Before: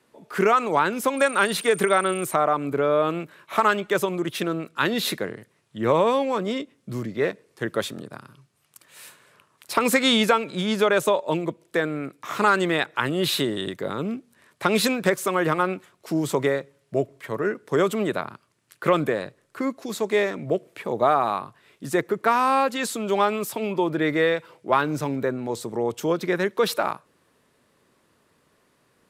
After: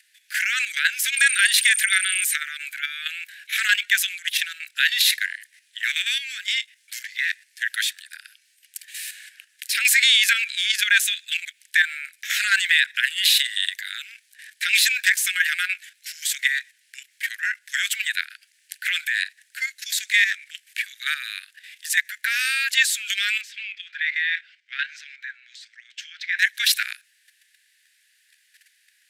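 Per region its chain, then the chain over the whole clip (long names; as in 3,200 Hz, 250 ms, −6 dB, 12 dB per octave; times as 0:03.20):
0:23.41–0:26.39: flanger 1.2 Hz, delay 3.2 ms, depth 7.6 ms, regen +79% + high-frequency loss of the air 170 metres
whole clip: Butterworth high-pass 1,600 Hz 96 dB per octave; output level in coarse steps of 10 dB; boost into a limiter +23 dB; level −6 dB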